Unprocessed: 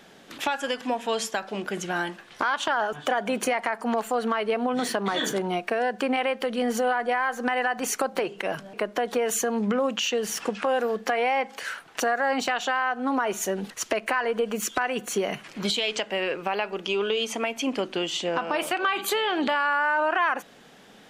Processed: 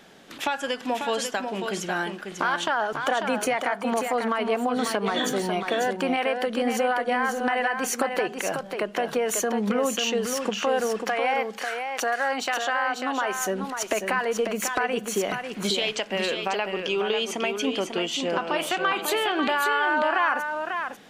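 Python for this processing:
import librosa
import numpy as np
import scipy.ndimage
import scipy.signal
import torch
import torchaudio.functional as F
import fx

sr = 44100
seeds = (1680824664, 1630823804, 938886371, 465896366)

y = fx.low_shelf(x, sr, hz=280.0, db=-10.5, at=(11.08, 13.38))
y = y + 10.0 ** (-6.0 / 20.0) * np.pad(y, (int(544 * sr / 1000.0), 0))[:len(y)]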